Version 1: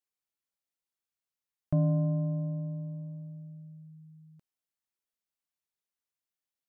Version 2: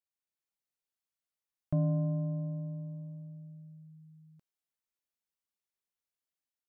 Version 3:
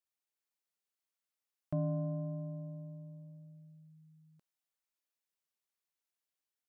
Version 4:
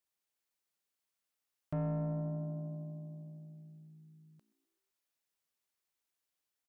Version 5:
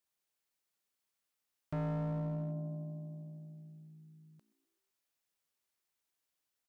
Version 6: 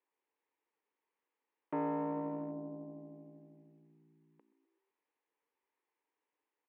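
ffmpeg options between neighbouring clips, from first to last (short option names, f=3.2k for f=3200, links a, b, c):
-af "dynaudnorm=f=130:g=5:m=5dB,volume=-8dB"
-af "lowshelf=f=180:g=-10.5"
-filter_complex "[0:a]asoftclip=type=tanh:threshold=-33.5dB,asplit=5[a][b][c][d][e];[b]adelay=127,afreqshift=58,volume=-20.5dB[f];[c]adelay=254,afreqshift=116,volume=-25.9dB[g];[d]adelay=381,afreqshift=174,volume=-31.2dB[h];[e]adelay=508,afreqshift=232,volume=-36.6dB[i];[a][f][g][h][i]amix=inputs=5:normalize=0,volume=3dB"
-af "asoftclip=type=hard:threshold=-34.5dB,volume=1dB"
-af "highpass=f=260:w=0.5412,highpass=f=260:w=1.3066,equalizer=f=300:t=q:w=4:g=5,equalizer=f=450:t=q:w=4:g=8,equalizer=f=650:t=q:w=4:g=-7,equalizer=f=920:t=q:w=4:g=8,equalizer=f=1.4k:t=q:w=4:g=-7,lowpass=f=2.3k:w=0.5412,lowpass=f=2.3k:w=1.3066,volume=4dB"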